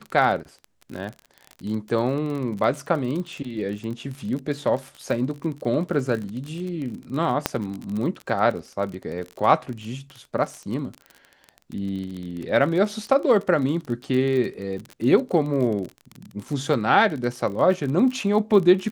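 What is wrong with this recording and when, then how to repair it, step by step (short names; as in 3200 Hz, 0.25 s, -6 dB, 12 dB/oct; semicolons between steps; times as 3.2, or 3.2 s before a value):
crackle 32/s -29 dBFS
7.46 pop -4 dBFS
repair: de-click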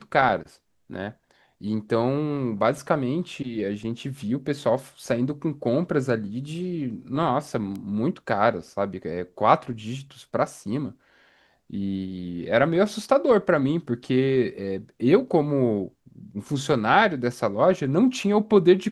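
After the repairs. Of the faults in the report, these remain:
none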